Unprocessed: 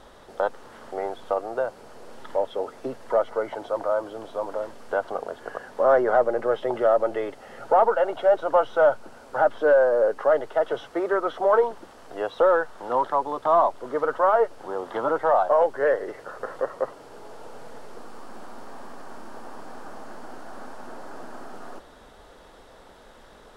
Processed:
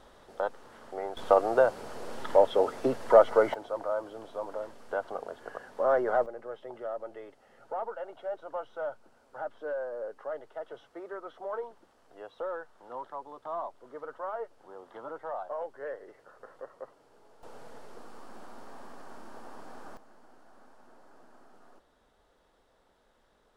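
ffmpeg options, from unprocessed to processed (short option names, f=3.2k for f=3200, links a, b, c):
-af "asetnsamples=n=441:p=0,asendcmd='1.17 volume volume 4dB;3.54 volume volume -7dB;6.26 volume volume -17dB;17.43 volume volume -6.5dB;19.97 volume volume -18dB',volume=-6.5dB"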